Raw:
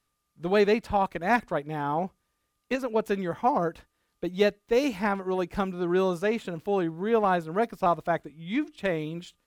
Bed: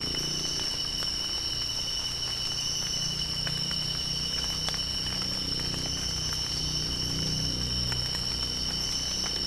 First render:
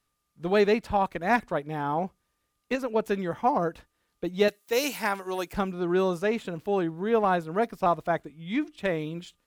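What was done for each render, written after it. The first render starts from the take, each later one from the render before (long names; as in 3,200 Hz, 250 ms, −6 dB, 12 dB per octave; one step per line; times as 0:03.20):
0:04.48–0:05.53: RIAA equalisation recording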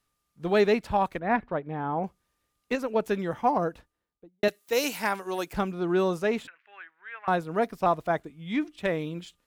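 0:01.19–0:02.04: high-frequency loss of the air 420 metres
0:03.52–0:04.43: fade out and dull
0:06.47–0:07.28: flat-topped band-pass 1,900 Hz, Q 1.9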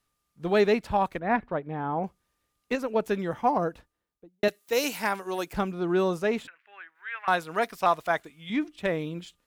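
0:06.95–0:08.50: tilt shelving filter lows −8 dB, about 720 Hz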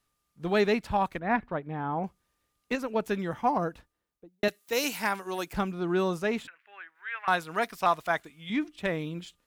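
dynamic equaliser 500 Hz, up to −4 dB, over −39 dBFS, Q 1.1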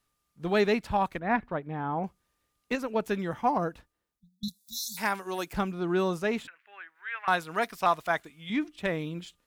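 0:04.20–0:04.98: time-frequency box erased 230–3,400 Hz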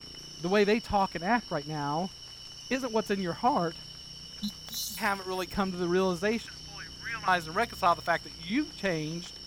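mix in bed −14.5 dB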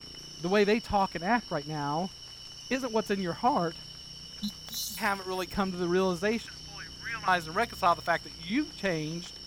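no processing that can be heard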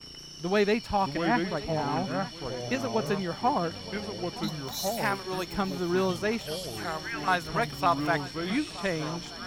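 feedback echo with a long and a short gap by turns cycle 1,226 ms, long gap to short 3 to 1, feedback 50%, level −18 dB
delay with pitch and tempo change per echo 507 ms, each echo −4 semitones, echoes 2, each echo −6 dB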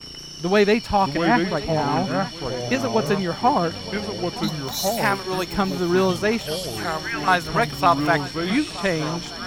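level +7.5 dB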